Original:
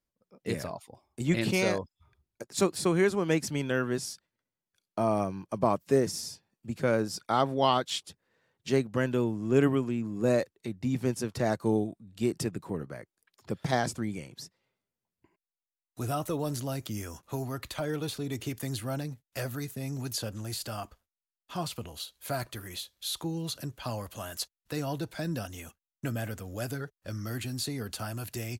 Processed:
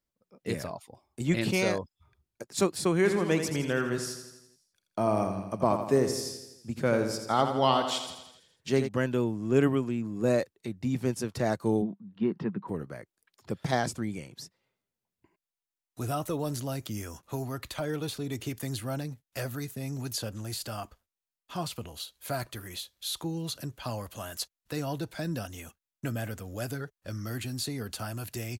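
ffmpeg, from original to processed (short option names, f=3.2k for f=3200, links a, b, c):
-filter_complex "[0:a]asplit=3[a][b][c];[a]afade=t=out:st=3.04:d=0.02[d];[b]aecho=1:1:83|166|249|332|415|498|581:0.398|0.227|0.129|0.0737|0.042|0.024|0.0137,afade=t=in:st=3.04:d=0.02,afade=t=out:st=8.87:d=0.02[e];[c]afade=t=in:st=8.87:d=0.02[f];[d][e][f]amix=inputs=3:normalize=0,asplit=3[g][h][i];[g]afade=t=out:st=11.81:d=0.02[j];[h]highpass=f=140:w=0.5412,highpass=f=140:w=1.3066,equalizer=f=200:t=q:w=4:g=9,equalizer=f=310:t=q:w=4:g=-3,equalizer=f=640:t=q:w=4:g=-7,equalizer=f=970:t=q:w=4:g=8,equalizer=f=2.4k:t=q:w=4:g=-7,lowpass=f=2.8k:w=0.5412,lowpass=f=2.8k:w=1.3066,afade=t=in:st=11.81:d=0.02,afade=t=out:st=12.67:d=0.02[k];[i]afade=t=in:st=12.67:d=0.02[l];[j][k][l]amix=inputs=3:normalize=0"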